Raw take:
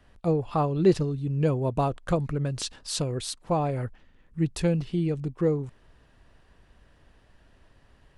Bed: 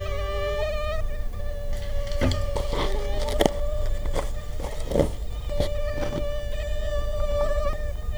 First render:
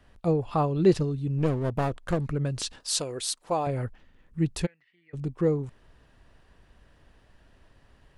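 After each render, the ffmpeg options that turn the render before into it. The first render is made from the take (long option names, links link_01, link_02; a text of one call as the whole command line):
ffmpeg -i in.wav -filter_complex "[0:a]asplit=3[link_01][link_02][link_03];[link_01]afade=type=out:start_time=1.37:duration=0.02[link_04];[link_02]aeval=exprs='clip(val(0),-1,0.0376)':channel_layout=same,afade=type=in:start_time=1.37:duration=0.02,afade=type=out:start_time=2.26:duration=0.02[link_05];[link_03]afade=type=in:start_time=2.26:duration=0.02[link_06];[link_04][link_05][link_06]amix=inputs=3:normalize=0,asettb=1/sr,asplit=3[link_07][link_08][link_09];[link_07]atrim=end=2.804[link_10];[link_08]atrim=start=2.8:end=3.67,asetpts=PTS-STARTPTS,afade=type=in:duration=0.004:curve=qsin,afade=type=out:start_time=0.866:duration=0.004:curve=qsin,bass=frequency=250:gain=-13,treble=frequency=4000:gain=5[link_11];[link_09]atrim=start=3.666[link_12];[link_10][link_11]acrossfade=duration=0.004:curve1=hsin:curve2=qsin[link_13];[link_13][link_12]acrossfade=duration=0.004:curve1=qsin:curve2=hsin,asplit=3[link_14][link_15][link_16];[link_14]afade=type=out:start_time=4.65:duration=0.02[link_17];[link_15]bandpass=frequency=1900:width_type=q:width=16,afade=type=in:start_time=4.65:duration=0.02,afade=type=out:start_time=5.13:duration=0.02[link_18];[link_16]afade=type=in:start_time=5.13:duration=0.02[link_19];[link_17][link_18][link_19]amix=inputs=3:normalize=0" out.wav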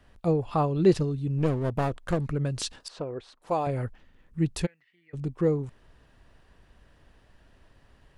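ffmpeg -i in.wav -filter_complex "[0:a]asettb=1/sr,asplit=3[link_01][link_02][link_03];[link_01]atrim=end=2.884[link_04];[link_02]atrim=start=2.88:end=3.42,asetpts=PTS-STARTPTS,afade=type=in:duration=0.004:curve=qsin,afade=type=out:start_time=0.536:duration=0.004:curve=qsin,lowpass=1300[link_05];[link_03]atrim=start=3.416[link_06];[link_04][link_05]acrossfade=duration=0.004:curve1=hsin:curve2=qsin[link_07];[link_07][link_06]acrossfade=duration=0.004:curve1=qsin:curve2=hsin" out.wav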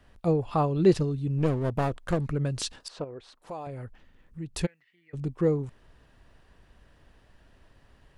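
ffmpeg -i in.wav -filter_complex "[0:a]asettb=1/sr,asplit=3[link_01][link_02][link_03];[link_01]atrim=end=3.044[link_04];[link_02]atrim=start=3.04:end=4.54,asetpts=PTS-STARTPTS,afade=type=in:duration=0.004:curve=qsin,afade=type=out:start_time=1.496:duration=0.004:curve=qsin,acompressor=threshold=-42dB:ratio=2:attack=3.2:release=140:knee=1:detection=peak[link_05];[link_03]atrim=start=4.536[link_06];[link_04][link_05]acrossfade=duration=0.004:curve1=hsin:curve2=qsin[link_07];[link_07][link_06]acrossfade=duration=0.004:curve1=qsin:curve2=hsin" out.wav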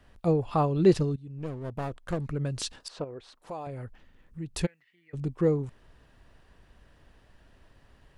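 ffmpeg -i in.wav -filter_complex "[0:a]asplit=2[link_01][link_02];[link_01]atrim=end=1.16,asetpts=PTS-STARTPTS,afade=type=out:start_time=1.156:duration=0.004:curve=hsin:silence=0.149624[link_03];[link_02]atrim=start=1.16,asetpts=PTS-STARTPTS,afade=type=in:duration=1.8:silence=0.149624[link_04];[link_03][link_04]concat=n=2:v=0:a=1" out.wav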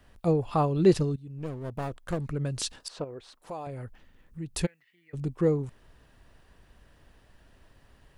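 ffmpeg -i in.wav -af "highshelf=frequency=9200:gain=8" out.wav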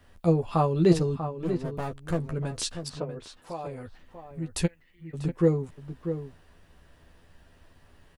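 ffmpeg -i in.wav -filter_complex "[0:a]asplit=2[link_01][link_02];[link_02]adelay=12,volume=-5dB[link_03];[link_01][link_03]amix=inputs=2:normalize=0,asplit=2[link_04][link_05];[link_05]adelay=641.4,volume=-9dB,highshelf=frequency=4000:gain=-14.4[link_06];[link_04][link_06]amix=inputs=2:normalize=0" out.wav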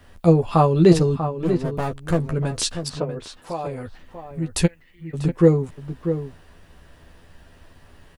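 ffmpeg -i in.wav -af "volume=7.5dB,alimiter=limit=-3dB:level=0:latency=1" out.wav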